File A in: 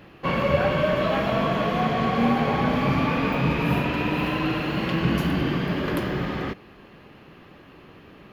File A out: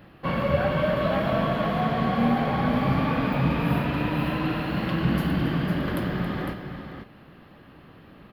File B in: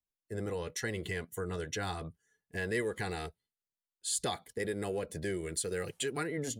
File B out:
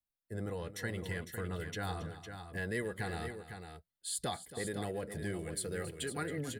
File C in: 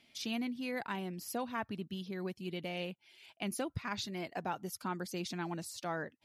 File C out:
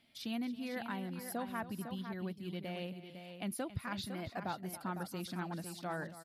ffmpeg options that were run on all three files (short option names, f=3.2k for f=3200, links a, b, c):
-af "equalizer=f=400:t=o:w=0.67:g=-6,equalizer=f=1k:t=o:w=0.67:g=-3,equalizer=f=2.5k:t=o:w=0.67:g=-6,equalizer=f=6.3k:t=o:w=0.67:g=-11,aecho=1:1:274|505:0.188|0.376"